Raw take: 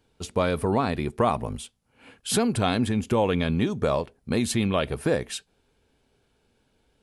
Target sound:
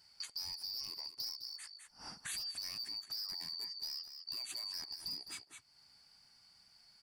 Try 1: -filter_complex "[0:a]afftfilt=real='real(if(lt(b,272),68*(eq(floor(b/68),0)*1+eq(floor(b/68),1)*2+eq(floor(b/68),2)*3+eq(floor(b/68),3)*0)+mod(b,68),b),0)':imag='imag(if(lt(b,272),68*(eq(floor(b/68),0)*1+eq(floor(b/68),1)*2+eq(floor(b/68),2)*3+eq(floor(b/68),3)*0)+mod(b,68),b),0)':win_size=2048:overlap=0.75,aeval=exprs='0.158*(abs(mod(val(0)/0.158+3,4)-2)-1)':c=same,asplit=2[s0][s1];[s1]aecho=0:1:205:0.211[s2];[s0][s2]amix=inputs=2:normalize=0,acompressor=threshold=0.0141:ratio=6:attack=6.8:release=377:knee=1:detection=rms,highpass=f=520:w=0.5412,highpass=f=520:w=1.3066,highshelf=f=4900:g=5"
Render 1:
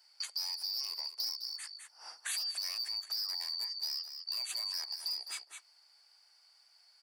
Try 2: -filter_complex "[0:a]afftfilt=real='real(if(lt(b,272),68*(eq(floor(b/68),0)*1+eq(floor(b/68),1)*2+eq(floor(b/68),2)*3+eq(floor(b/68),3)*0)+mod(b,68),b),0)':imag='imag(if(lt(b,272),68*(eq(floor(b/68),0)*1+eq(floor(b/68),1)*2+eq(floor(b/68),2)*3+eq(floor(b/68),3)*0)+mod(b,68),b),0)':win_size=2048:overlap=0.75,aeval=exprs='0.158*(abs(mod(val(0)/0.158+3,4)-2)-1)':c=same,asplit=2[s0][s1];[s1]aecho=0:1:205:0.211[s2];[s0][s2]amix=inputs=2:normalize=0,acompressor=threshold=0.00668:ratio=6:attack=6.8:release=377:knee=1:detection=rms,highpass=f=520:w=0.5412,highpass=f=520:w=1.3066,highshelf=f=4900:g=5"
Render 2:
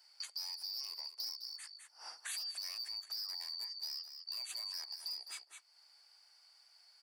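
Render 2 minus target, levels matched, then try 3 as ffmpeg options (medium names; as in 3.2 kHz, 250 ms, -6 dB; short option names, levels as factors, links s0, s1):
500 Hz band -3.5 dB
-filter_complex "[0:a]afftfilt=real='real(if(lt(b,272),68*(eq(floor(b/68),0)*1+eq(floor(b/68),1)*2+eq(floor(b/68),2)*3+eq(floor(b/68),3)*0)+mod(b,68),b),0)':imag='imag(if(lt(b,272),68*(eq(floor(b/68),0)*1+eq(floor(b/68),1)*2+eq(floor(b/68),2)*3+eq(floor(b/68),3)*0)+mod(b,68),b),0)':win_size=2048:overlap=0.75,aeval=exprs='0.158*(abs(mod(val(0)/0.158+3,4)-2)-1)':c=same,asplit=2[s0][s1];[s1]aecho=0:1:205:0.211[s2];[s0][s2]amix=inputs=2:normalize=0,acompressor=threshold=0.00668:ratio=6:attack=6.8:release=377:knee=1:detection=rms,highshelf=f=4900:g=5"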